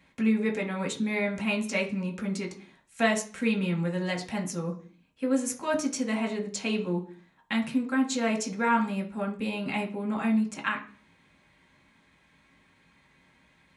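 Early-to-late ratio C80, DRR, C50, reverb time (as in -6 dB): 17.0 dB, 0.5 dB, 12.5 dB, 0.45 s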